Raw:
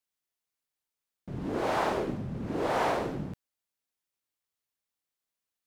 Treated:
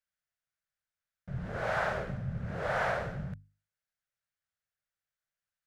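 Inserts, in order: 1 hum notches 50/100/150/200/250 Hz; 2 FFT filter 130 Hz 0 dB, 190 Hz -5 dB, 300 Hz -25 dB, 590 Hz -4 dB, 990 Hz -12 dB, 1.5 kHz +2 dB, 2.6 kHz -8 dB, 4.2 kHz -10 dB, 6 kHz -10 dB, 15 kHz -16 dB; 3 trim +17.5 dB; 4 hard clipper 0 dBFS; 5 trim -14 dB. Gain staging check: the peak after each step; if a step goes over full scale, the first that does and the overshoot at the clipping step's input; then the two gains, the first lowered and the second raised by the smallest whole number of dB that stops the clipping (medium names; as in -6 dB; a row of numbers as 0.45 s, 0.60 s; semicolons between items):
-16.0 dBFS, -21.5 dBFS, -4.0 dBFS, -4.0 dBFS, -18.0 dBFS; nothing clips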